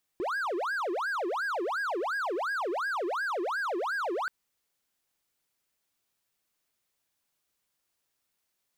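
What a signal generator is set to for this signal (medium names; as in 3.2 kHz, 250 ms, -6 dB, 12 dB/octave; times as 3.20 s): siren wail 339–1650 Hz 2.8 per s triangle -26.5 dBFS 4.08 s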